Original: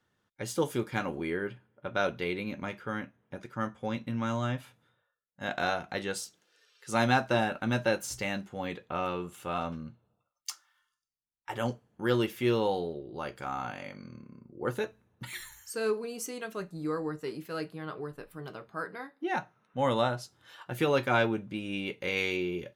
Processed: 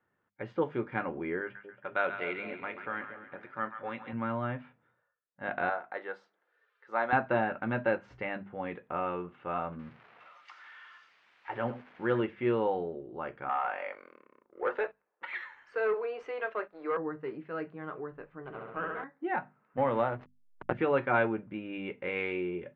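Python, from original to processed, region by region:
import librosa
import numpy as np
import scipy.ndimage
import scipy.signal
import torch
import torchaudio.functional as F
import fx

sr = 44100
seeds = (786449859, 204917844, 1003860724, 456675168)

y = fx.chain(x, sr, fx.tilt_eq(slope=3.0),
    fx.echo_split(split_hz=770.0, low_ms=230, high_ms=136, feedback_pct=52, wet_db=-9), at=(1.41, 4.13))
y = fx.chain(y, sr, fx.highpass(hz=510.0, slope=12),
    fx.peak_eq(hz=2700.0, db=-8.5, octaves=0.59), at=(5.69, 7.13))
y = fx.chain(y, sr, fx.crossing_spikes(level_db=-30.0),
    fx.echo_single(ms=89, db=-14.0), at=(9.79, 12.21))
y = fx.chain(y, sr, fx.highpass(hz=450.0, slope=24),
    fx.leveller(passes=2), at=(13.49, 16.97))
y = fx.chain(y, sr, fx.room_flutter(wall_m=11.5, rt60_s=1.4),
    fx.running_max(window=5), at=(18.44, 19.04))
y = fx.chain(y, sr, fx.backlash(play_db=-33.5),
    fx.resample_bad(factor=4, down='filtered', up='zero_stuff'),
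    fx.band_squash(depth_pct=100), at=(19.77, 20.73))
y = scipy.signal.sosfilt(scipy.signal.butter(4, 2200.0, 'lowpass', fs=sr, output='sos'), y)
y = fx.low_shelf(y, sr, hz=150.0, db=-8.0)
y = fx.hum_notches(y, sr, base_hz=50, count=5)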